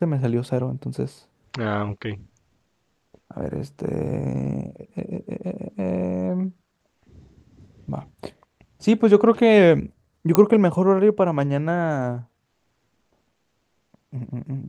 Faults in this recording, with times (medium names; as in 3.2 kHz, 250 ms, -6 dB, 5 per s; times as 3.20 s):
10.35 s: pop -3 dBFS